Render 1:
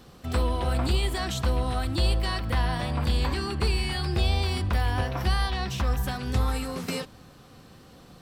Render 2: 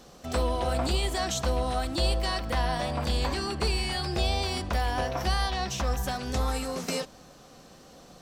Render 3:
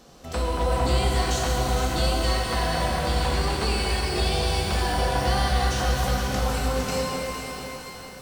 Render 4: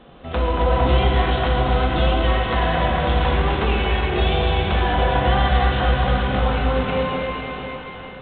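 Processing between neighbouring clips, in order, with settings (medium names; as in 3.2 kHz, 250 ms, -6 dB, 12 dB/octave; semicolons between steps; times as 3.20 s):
fifteen-band graphic EQ 100 Hz -11 dB, 630 Hz +7 dB, 6.3 kHz +9 dB; trim -1.5 dB
echo whose repeats swap between lows and highs 229 ms, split 2.2 kHz, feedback 67%, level -5 dB; pitch-shifted reverb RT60 3.2 s, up +12 st, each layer -8 dB, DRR -1 dB; trim -1 dB
trim +5.5 dB; IMA ADPCM 32 kbps 8 kHz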